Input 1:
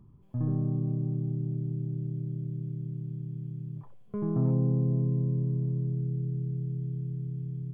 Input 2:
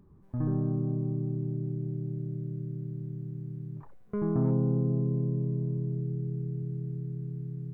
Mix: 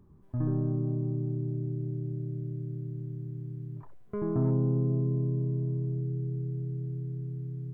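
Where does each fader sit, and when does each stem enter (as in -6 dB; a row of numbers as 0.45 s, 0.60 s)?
-8.0 dB, -1.0 dB; 0.00 s, 0.00 s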